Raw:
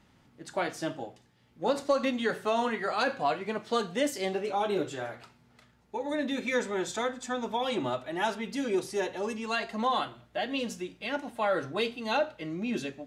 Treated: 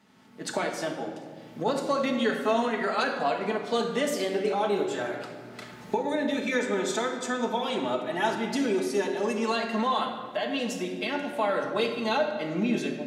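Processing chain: recorder AGC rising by 23 dB/s; HPF 180 Hz 12 dB/oct; shoebox room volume 2300 m³, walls mixed, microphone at 1.5 m

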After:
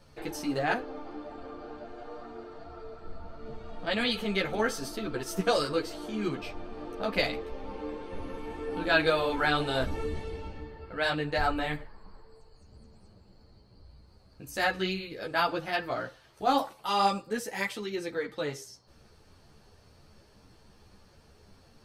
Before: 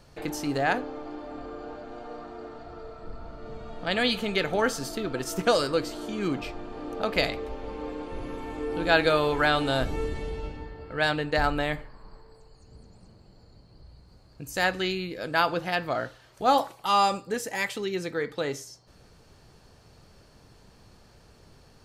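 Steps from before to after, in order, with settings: notch 7100 Hz, Q 10; ensemble effect

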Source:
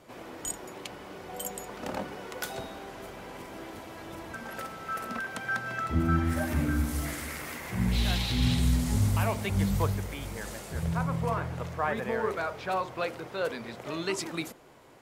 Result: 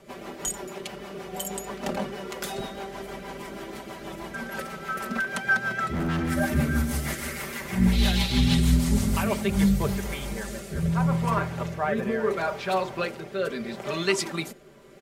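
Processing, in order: comb 5.1 ms, depth 73%; rotary speaker horn 6.3 Hz, later 0.75 Hz, at 9.09; 5.9–6.3 overloaded stage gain 29.5 dB; gain +5.5 dB

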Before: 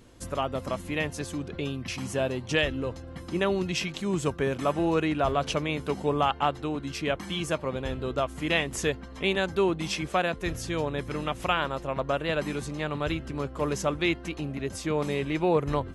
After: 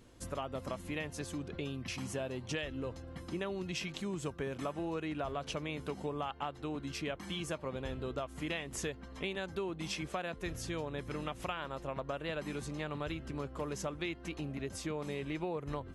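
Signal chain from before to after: compressor, threshold -29 dBFS, peak gain reduction 10 dB; gain -5.5 dB

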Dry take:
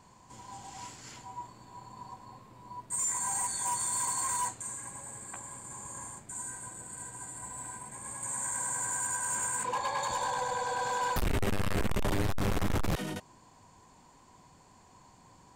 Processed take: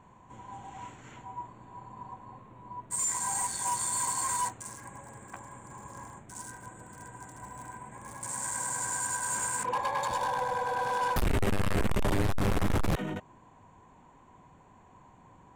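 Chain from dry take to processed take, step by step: Wiener smoothing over 9 samples; gain +2.5 dB

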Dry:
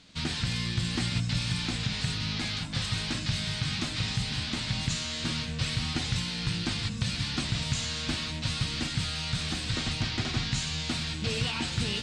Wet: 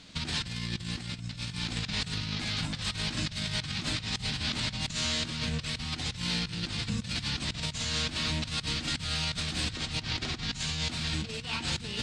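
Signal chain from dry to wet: negative-ratio compressor -34 dBFS, ratio -0.5; gain +1 dB

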